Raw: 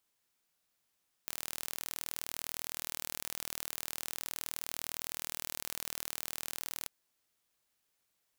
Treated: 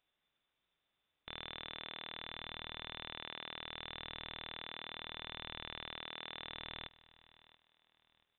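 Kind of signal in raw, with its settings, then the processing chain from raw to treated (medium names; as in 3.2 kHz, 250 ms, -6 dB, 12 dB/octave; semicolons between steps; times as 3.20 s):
pulse train 39.6 per s, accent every 0, -11 dBFS 5.60 s
peaking EQ 270 Hz +14.5 dB 0.47 oct; feedback delay 681 ms, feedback 30%, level -19 dB; frequency inversion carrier 3.8 kHz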